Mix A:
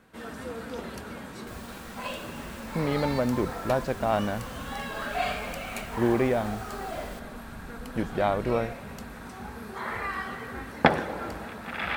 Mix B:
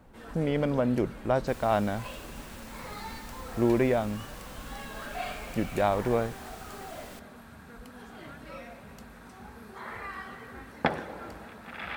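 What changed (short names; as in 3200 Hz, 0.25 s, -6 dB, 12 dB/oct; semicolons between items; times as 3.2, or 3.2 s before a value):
speech: entry -2.40 s; first sound -7.0 dB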